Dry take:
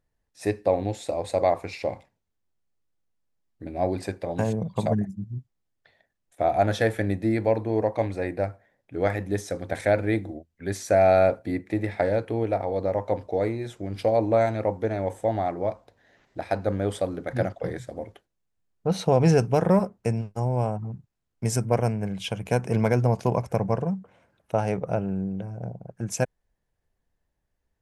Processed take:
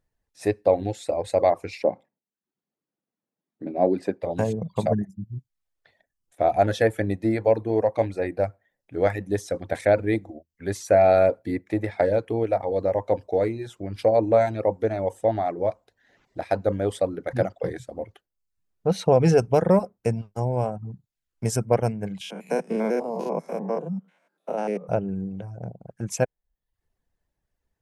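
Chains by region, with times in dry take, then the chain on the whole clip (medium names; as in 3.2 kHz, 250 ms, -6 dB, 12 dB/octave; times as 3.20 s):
1.83–4.23 s: high-pass 190 Hz 24 dB/octave + tilt EQ -3 dB/octave
22.21–24.89 s: spectrogram pixelated in time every 100 ms + steep high-pass 160 Hz 96 dB/octave
whole clip: reverb removal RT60 0.53 s; dynamic bell 500 Hz, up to +4 dB, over -35 dBFS, Q 1.3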